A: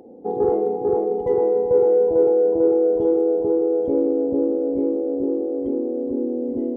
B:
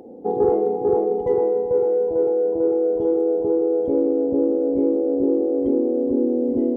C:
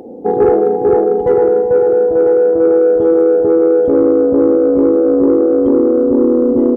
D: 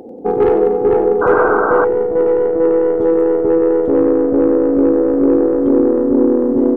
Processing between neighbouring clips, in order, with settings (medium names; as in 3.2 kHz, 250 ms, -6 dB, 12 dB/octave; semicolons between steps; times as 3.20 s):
gain riding within 4 dB 0.5 s
delay 998 ms -12.5 dB; saturation -10.5 dBFS, distortion -23 dB; trim +9 dB
tracing distortion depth 0.09 ms; two-band feedback delay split 380 Hz, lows 561 ms, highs 93 ms, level -11 dB; painted sound noise, 1.21–1.85 s, 270–1600 Hz -14 dBFS; trim -2 dB